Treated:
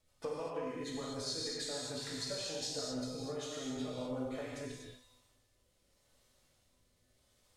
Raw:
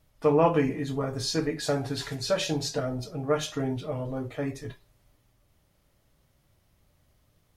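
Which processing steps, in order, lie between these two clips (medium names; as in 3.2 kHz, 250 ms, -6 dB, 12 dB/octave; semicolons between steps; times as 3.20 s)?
ten-band graphic EQ 125 Hz -4 dB, 500 Hz +6 dB, 1 kHz +4 dB, 2 kHz +3 dB, 4 kHz +7 dB, 8 kHz +12 dB; compression 12:1, threshold -27 dBFS, peak gain reduction 17 dB; feedback comb 250 Hz, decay 0.92 s, mix 80%; rotary cabinet horn 6.7 Hz, later 0.8 Hz, at 3.87 s; gated-style reverb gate 270 ms flat, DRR -3 dB; trim +1.5 dB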